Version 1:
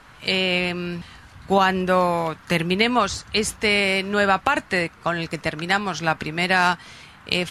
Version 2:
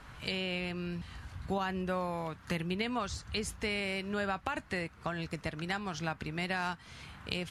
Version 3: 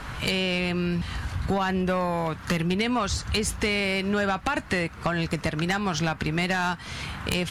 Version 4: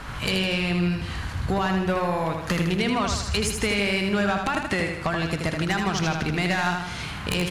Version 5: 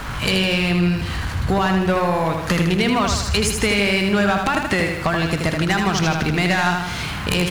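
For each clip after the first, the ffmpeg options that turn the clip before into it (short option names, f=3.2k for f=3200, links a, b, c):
-af "equalizer=f=60:t=o:w=2.8:g=9.5,acompressor=threshold=-34dB:ratio=2,volume=-5.5dB"
-af "aeval=exprs='0.15*sin(PI/2*2.51*val(0)/0.15)':c=same,acompressor=threshold=-26dB:ratio=3,volume=3dB"
-af "aecho=1:1:79|158|237|316|395|474|553:0.562|0.298|0.158|0.0837|0.0444|0.0235|0.0125"
-af "aeval=exprs='val(0)+0.5*0.0106*sgn(val(0))':c=same,volume=5dB"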